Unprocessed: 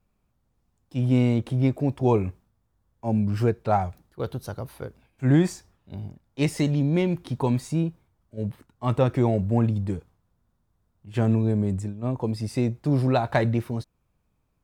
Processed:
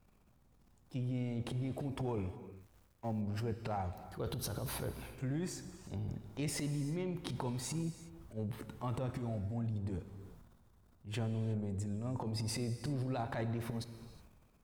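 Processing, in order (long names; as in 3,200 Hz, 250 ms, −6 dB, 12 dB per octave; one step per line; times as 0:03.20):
0:02.29–0:03.21: mu-law and A-law mismatch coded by A
0:09.11–0:09.74: graphic EQ with 15 bands 160 Hz −7 dB, 400 Hz −10 dB, 1,000 Hz −10 dB, 2,500 Hz −7 dB
transient designer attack −9 dB, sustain +11 dB
downward compressor 8 to 1, threshold −39 dBFS, peak gain reduction 24 dB
reverb whose tail is shaped and stops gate 390 ms flat, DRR 10.5 dB
level +2.5 dB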